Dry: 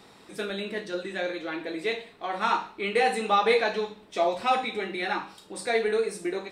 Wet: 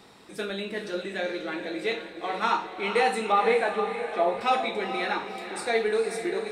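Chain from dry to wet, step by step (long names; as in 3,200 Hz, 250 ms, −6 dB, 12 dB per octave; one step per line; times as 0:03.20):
0:03.32–0:04.41: low-pass filter 2,300 Hz 12 dB per octave
feedback delay with all-pass diffusion 462 ms, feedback 48%, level −9 dB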